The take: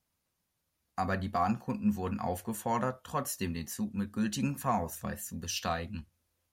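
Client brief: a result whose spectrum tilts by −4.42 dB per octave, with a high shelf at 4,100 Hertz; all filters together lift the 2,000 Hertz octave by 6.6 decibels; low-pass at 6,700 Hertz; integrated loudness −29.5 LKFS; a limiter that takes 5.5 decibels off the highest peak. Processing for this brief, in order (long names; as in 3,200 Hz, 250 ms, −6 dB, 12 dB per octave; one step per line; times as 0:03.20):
low-pass filter 6,700 Hz
parametric band 2,000 Hz +7.5 dB
high-shelf EQ 4,100 Hz +5 dB
level +4.5 dB
brickwall limiter −16 dBFS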